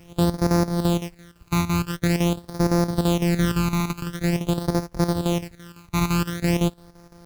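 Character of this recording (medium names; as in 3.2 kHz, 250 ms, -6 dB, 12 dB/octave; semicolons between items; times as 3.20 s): a buzz of ramps at a fixed pitch in blocks of 256 samples; phasing stages 12, 0.46 Hz, lowest notch 540–3000 Hz; a quantiser's noise floor 10-bit, dither none; chopped level 5.9 Hz, depth 65%, duty 75%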